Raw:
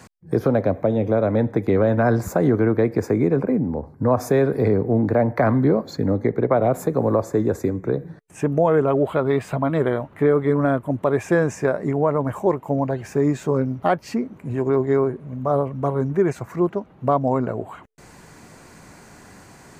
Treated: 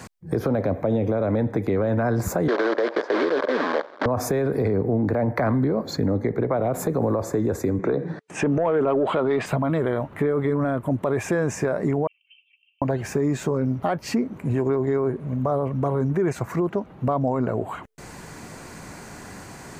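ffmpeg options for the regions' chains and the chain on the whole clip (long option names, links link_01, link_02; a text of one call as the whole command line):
ffmpeg -i in.wav -filter_complex "[0:a]asettb=1/sr,asplit=3[link_01][link_02][link_03];[link_01]atrim=end=2.484[link_04];[link_02]atrim=start=2.48:end=4.06,asetpts=PTS-STARTPTS,afade=type=in:duration=0.004:curve=qsin,afade=type=out:start_time=1.576:duration=0.004:curve=qsin,acrusher=bits=5:dc=4:mix=0:aa=0.000001,highpass=frequency=330:width=0.5412,highpass=frequency=330:width=1.3066,equalizer=frequency=590:width_type=q:width=4:gain=10,equalizer=frequency=1100:width_type=q:width=4:gain=7,equalizer=frequency=1600:width_type=q:width=4:gain=8,equalizer=frequency=2700:width_type=q:width=4:gain=-8,lowpass=frequency=4200:width=0.5412,lowpass=frequency=4200:width=1.3066[link_05];[link_03]atrim=start=4.056[link_06];[link_04][link_05]acrossfade=duration=0.004:curve1=hsin:curve2=qsin[link_07];[link_07][link_06]acrossfade=duration=0.004:curve1=qsin:curve2=hsin,asettb=1/sr,asplit=3[link_08][link_09][link_10];[link_08]atrim=end=7.794[link_11];[link_09]atrim=start=7.79:end=9.46,asetpts=PTS-STARTPTS,afade=type=in:duration=0.004:curve=qsin,afade=type=out:start_time=1.666:duration=0.004:curve=qsin,highpass=200,lowpass=5300,acontrast=68[link_12];[link_10]atrim=start=9.456[link_13];[link_11][link_12]acrossfade=duration=0.004:curve1=hsin:curve2=qsin[link_14];[link_14][link_13]acrossfade=duration=0.004:curve1=qsin:curve2=hsin,asettb=1/sr,asplit=3[link_15][link_16][link_17];[link_15]atrim=end=12.074[link_18];[link_16]atrim=start=12.07:end=12.82,asetpts=PTS-STARTPTS,afade=type=in:duration=0.004:curve=qsin,afade=type=out:start_time=0.746:duration=0.004:curve=qsin,asuperpass=centerf=2800:order=8:qfactor=4.6,aecho=1:1:2.6:0.74,atrim=end_sample=33075[link_19];[link_17]atrim=start=12.816[link_20];[link_18][link_19]acrossfade=duration=0.004:curve1=hsin:curve2=qsin[link_21];[link_21][link_20]acrossfade=duration=0.004:curve1=qsin:curve2=hsin,alimiter=limit=-15.5dB:level=0:latency=1:release=25,acompressor=threshold=-27dB:ratio=2,volume=5.5dB" out.wav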